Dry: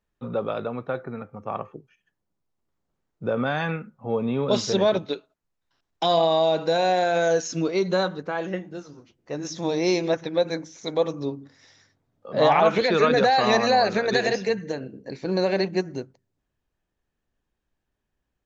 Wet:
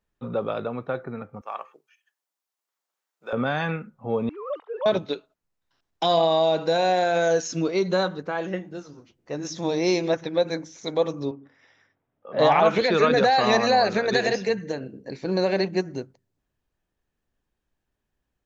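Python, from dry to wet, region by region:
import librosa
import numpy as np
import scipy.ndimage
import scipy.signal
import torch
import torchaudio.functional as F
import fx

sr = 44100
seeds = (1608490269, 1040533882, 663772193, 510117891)

y = fx.chain(x, sr, fx.highpass(hz=870.0, slope=12),
    fx.high_shelf(hz=4700.0, db=7.0), at=(1.41, 3.33))
y = fx.chain(y, sr, fx.sine_speech(),
    fx.backlash(play_db=-44.5),
    fx.bandpass_q(hz=960.0, q=2.2), at=(4.29, 4.86))
y = fx.chain(y, sr, fx.savgol(points=25),
    fx.low_shelf(hz=230.0, db=-11.0), at=(11.31, 12.39))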